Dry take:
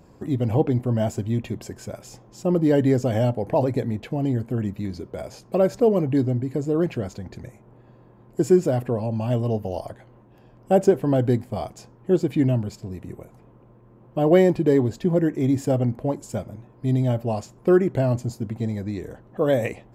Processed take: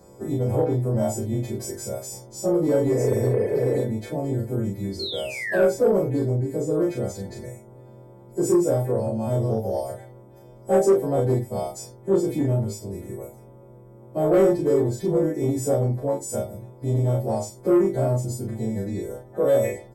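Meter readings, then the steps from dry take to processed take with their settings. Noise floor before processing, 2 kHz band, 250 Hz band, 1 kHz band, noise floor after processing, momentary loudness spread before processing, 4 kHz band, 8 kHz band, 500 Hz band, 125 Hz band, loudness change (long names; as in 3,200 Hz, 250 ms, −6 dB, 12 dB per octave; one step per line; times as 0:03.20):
−52 dBFS, +1.5 dB, −2.5 dB, −1.5 dB, −47 dBFS, 16 LU, +4.0 dB, +7.5 dB, +1.0 dB, −1.5 dB, −1.0 dB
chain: every partial snapped to a pitch grid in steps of 2 semitones
sound drawn into the spectrogram fall, 0:04.99–0:05.62, 1,400–4,400 Hz −25 dBFS
in parallel at −1 dB: downward compressor, threshold −32 dBFS, peak gain reduction 19.5 dB
on the sum: parametric band 2,800 Hz −12.5 dB 0.63 octaves
reverb whose tail is shaped and stops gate 80 ms rising, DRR 10.5 dB
healed spectral selection 0:02.94–0:03.74, 290–3,400 Hz after
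notch filter 2,800 Hz, Q 26
double-tracking delay 31 ms −2 dB
soft clipping −10.5 dBFS, distortion −15 dB
parametric band 480 Hz +7 dB 1.4 octaves
level −6.5 dB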